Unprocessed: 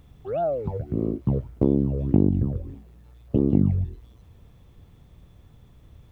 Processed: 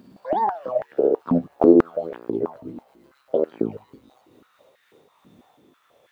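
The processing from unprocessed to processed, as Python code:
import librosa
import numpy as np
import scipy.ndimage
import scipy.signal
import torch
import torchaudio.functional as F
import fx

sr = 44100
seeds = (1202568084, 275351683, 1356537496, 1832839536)

y = fx.pitch_glide(x, sr, semitones=5.0, runs='ending unshifted')
y = fx.filter_held_highpass(y, sr, hz=6.1, low_hz=240.0, high_hz=1700.0)
y = y * 10.0 ** (3.0 / 20.0)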